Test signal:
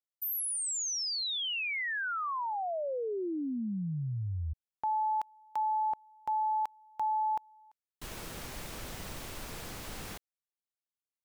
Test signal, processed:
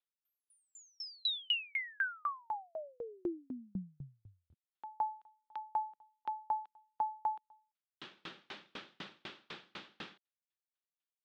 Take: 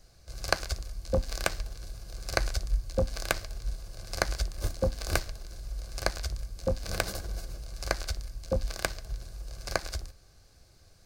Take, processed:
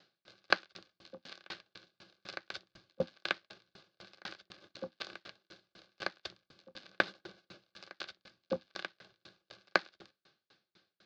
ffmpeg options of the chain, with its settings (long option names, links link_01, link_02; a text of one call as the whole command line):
ffmpeg -i in.wav -af "highpass=frequency=210:width=0.5412,highpass=frequency=210:width=1.3066,equalizer=frequency=260:width_type=q:width=4:gain=-9,equalizer=frequency=470:width_type=q:width=4:gain=-9,equalizer=frequency=680:width_type=q:width=4:gain=-10,equalizer=frequency=1000:width_type=q:width=4:gain=-6,equalizer=frequency=2100:width_type=q:width=4:gain=-4,equalizer=frequency=3500:width_type=q:width=4:gain=4,lowpass=frequency=3800:width=0.5412,lowpass=frequency=3800:width=1.3066,aeval=exprs='val(0)*pow(10,-39*if(lt(mod(4*n/s,1),2*abs(4)/1000),1-mod(4*n/s,1)/(2*abs(4)/1000),(mod(4*n/s,1)-2*abs(4)/1000)/(1-2*abs(4)/1000))/20)':channel_layout=same,volume=7.5dB" out.wav